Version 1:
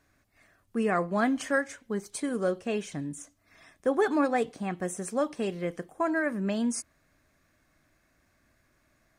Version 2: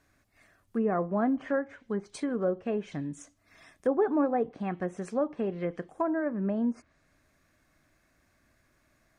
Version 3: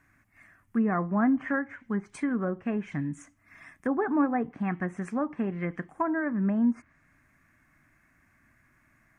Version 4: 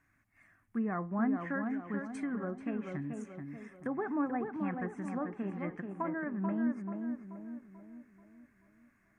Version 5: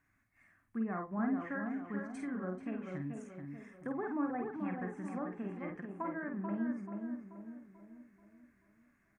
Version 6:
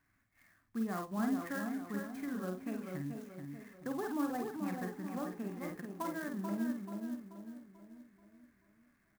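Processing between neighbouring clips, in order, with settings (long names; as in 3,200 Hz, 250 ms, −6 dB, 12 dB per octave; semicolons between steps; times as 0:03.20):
treble cut that deepens with the level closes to 950 Hz, closed at −25 dBFS
graphic EQ with 10 bands 125 Hz +5 dB, 250 Hz +5 dB, 500 Hz −9 dB, 1,000 Hz +4 dB, 2,000 Hz +10 dB, 4,000 Hz −12 dB
tape delay 435 ms, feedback 52%, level −3.5 dB, low-pass 1,500 Hz; level −8 dB
double-tracking delay 49 ms −5 dB; level −4 dB
converter with an unsteady clock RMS 0.034 ms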